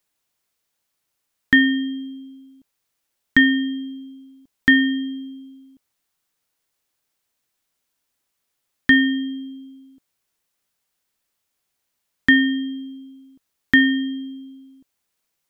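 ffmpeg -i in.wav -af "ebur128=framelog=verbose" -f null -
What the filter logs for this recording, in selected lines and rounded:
Integrated loudness:
  I:         -18.6 LUFS
  Threshold: -31.4 LUFS
Loudness range:
  LRA:         4.0 LU
  Threshold: -43.6 LUFS
  LRA low:   -25.5 LUFS
  LRA high:  -21.5 LUFS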